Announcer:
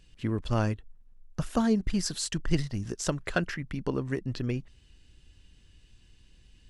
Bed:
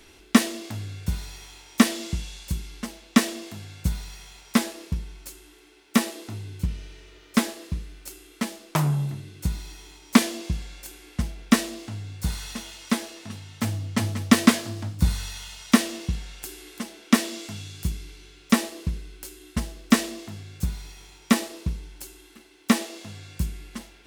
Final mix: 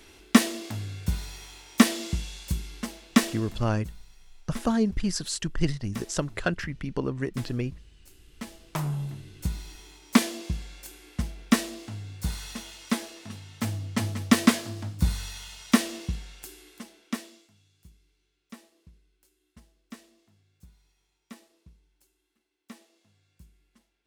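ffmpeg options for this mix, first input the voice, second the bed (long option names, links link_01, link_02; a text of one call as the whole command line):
ffmpeg -i stem1.wav -i stem2.wav -filter_complex "[0:a]adelay=3100,volume=1dB[link_01];[1:a]volume=13.5dB,afade=type=out:start_time=3.03:duration=0.8:silence=0.149624,afade=type=in:start_time=8.05:duration=1.46:silence=0.199526,afade=type=out:start_time=15.98:duration=1.52:silence=0.0668344[link_02];[link_01][link_02]amix=inputs=2:normalize=0" out.wav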